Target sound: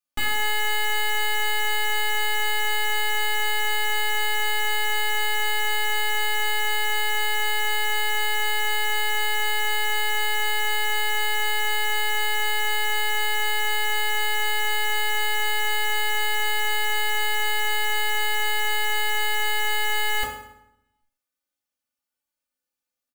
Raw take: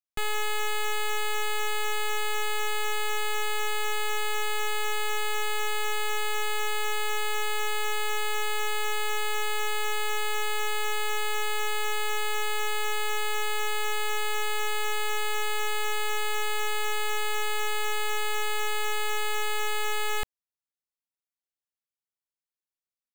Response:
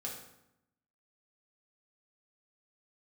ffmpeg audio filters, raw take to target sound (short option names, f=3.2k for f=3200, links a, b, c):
-filter_complex "[0:a]aecho=1:1:3.4:0.9[a];[1:a]atrim=start_sample=2205[b];[a][b]afir=irnorm=-1:irlink=0,volume=5.5dB"